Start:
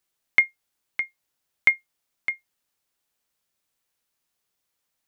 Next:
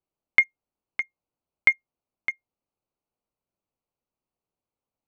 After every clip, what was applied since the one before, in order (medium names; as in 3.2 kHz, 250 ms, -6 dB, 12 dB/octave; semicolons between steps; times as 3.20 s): local Wiener filter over 25 samples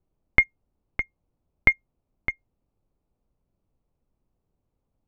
tilt EQ -4.5 dB/octave; trim +5 dB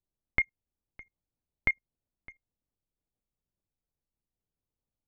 level held to a coarse grid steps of 23 dB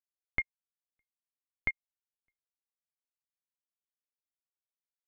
upward expansion 2.5:1, over -43 dBFS; trim -3 dB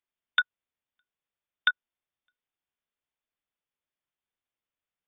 frequency inversion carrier 3.6 kHz; trim +7 dB